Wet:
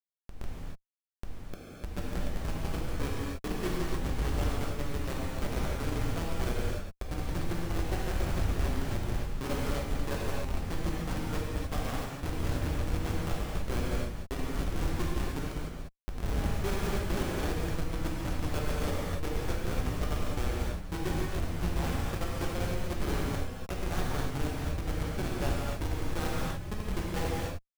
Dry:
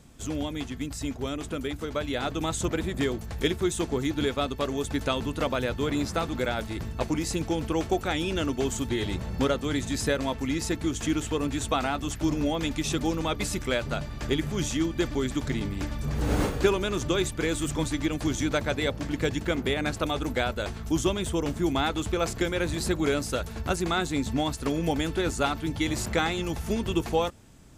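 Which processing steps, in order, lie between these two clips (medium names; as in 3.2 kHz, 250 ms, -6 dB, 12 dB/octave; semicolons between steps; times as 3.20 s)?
Schmitt trigger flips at -20.5 dBFS; gated-style reverb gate 320 ms flat, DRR -5.5 dB; trim -5.5 dB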